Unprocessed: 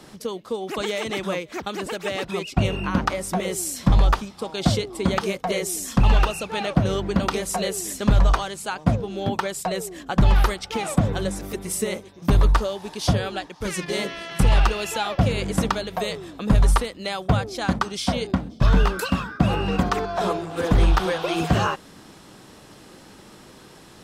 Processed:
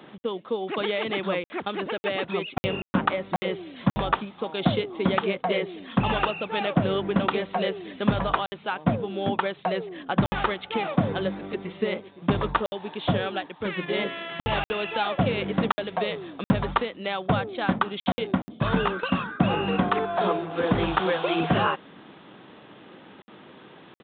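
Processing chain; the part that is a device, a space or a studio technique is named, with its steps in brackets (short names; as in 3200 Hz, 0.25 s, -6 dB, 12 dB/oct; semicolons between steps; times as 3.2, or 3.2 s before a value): call with lost packets (HPF 160 Hz 12 dB/oct; downsampling 8000 Hz; packet loss packets of 60 ms random); 18.75–19.19 gate with hold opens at -18 dBFS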